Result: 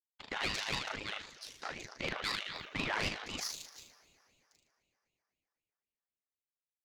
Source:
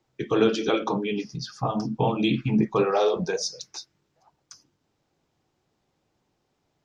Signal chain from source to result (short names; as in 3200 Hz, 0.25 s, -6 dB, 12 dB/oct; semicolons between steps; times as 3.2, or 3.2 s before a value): on a send: flutter echo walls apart 6.6 m, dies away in 0.94 s; 1.5–1.92 on the sum: frequency shift -140 Hz; power-law curve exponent 2; in parallel at -0.5 dB: compressor, threshold -39 dBFS, peak gain reduction 19 dB; on the sum: inverse Chebyshev high-pass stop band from 400 Hz, stop band 50 dB; FDN reverb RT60 3.5 s, high-frequency decay 0.75×, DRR 19 dB; soft clip -26.5 dBFS, distortion -13 dB; ring modulator with a swept carrier 850 Hz, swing 70%, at 3.9 Hz; gain +3.5 dB